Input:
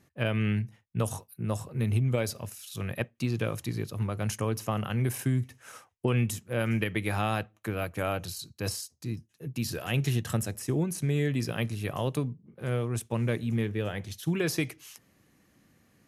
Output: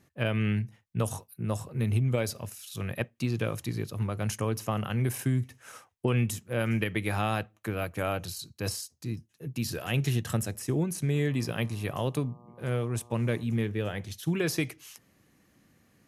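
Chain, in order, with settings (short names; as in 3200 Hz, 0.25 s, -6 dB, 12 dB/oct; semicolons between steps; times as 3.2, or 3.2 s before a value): 11.13–13.42 buzz 120 Hz, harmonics 10, -56 dBFS -2 dB/oct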